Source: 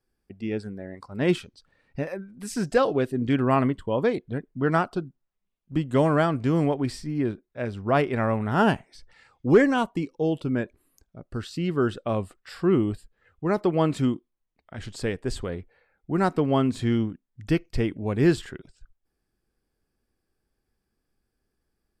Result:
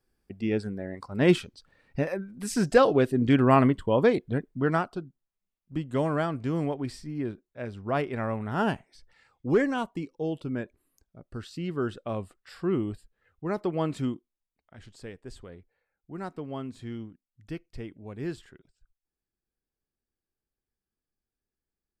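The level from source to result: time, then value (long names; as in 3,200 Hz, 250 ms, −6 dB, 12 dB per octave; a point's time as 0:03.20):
0:04.43 +2 dB
0:04.92 −6 dB
0:14.08 −6 dB
0:15.03 −14 dB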